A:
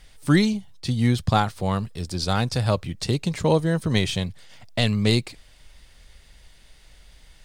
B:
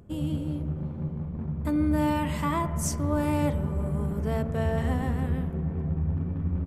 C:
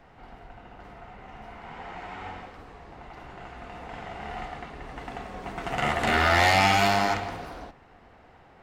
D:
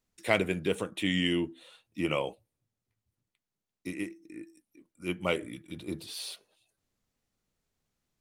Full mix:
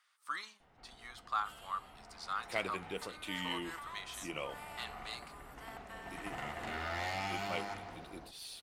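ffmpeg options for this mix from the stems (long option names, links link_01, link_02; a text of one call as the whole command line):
ffmpeg -i stem1.wav -i stem2.wav -i stem3.wav -i stem4.wav -filter_complex "[0:a]highpass=frequency=1200:width_type=q:width=6.8,flanger=delay=4.2:depth=9.9:regen=-88:speed=0.35:shape=triangular,volume=-15.5dB[link_01];[1:a]highpass=frequency=1000:width=0.5412,highpass=frequency=1000:width=1.3066,acompressor=threshold=-41dB:ratio=6,adelay=1350,volume=-6dB[link_02];[2:a]alimiter=limit=-18dB:level=0:latency=1:release=202,adelay=600,volume=-13dB[link_03];[3:a]lowshelf=frequency=400:gain=-9,adelay=2250,volume=-8.5dB[link_04];[link_01][link_02][link_03][link_04]amix=inputs=4:normalize=0" out.wav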